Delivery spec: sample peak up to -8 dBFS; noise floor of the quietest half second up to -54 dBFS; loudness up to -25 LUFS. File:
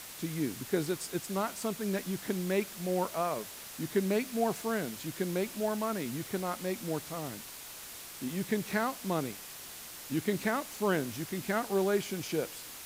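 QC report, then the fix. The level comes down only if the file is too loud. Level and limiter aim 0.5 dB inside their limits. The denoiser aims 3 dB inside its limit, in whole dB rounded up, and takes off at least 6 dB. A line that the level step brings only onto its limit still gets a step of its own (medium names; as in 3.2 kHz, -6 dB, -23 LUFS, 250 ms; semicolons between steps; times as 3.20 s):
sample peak -15.0 dBFS: pass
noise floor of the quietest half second -46 dBFS: fail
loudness -34.0 LUFS: pass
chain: noise reduction 11 dB, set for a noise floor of -46 dBFS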